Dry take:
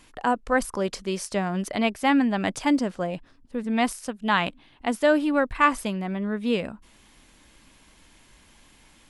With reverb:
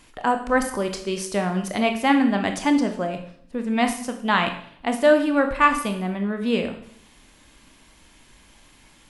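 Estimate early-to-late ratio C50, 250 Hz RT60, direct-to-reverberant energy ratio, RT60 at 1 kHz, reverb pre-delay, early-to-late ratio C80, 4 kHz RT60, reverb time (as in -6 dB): 9.0 dB, 0.70 s, 5.5 dB, 0.60 s, 20 ms, 12.5 dB, 0.60 s, 0.60 s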